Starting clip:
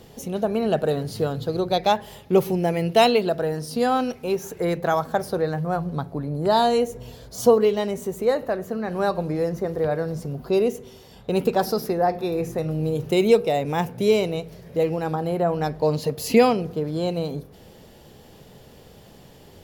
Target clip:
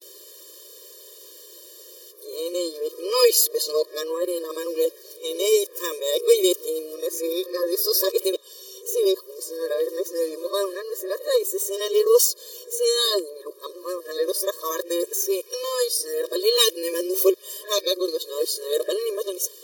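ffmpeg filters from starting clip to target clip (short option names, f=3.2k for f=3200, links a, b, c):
-af "areverse,aexciter=amount=7:drive=2.8:freq=3.6k,afftfilt=real='re*eq(mod(floor(b*sr/1024/320),2),1)':imag='im*eq(mod(floor(b*sr/1024/320),2),1)':win_size=1024:overlap=0.75"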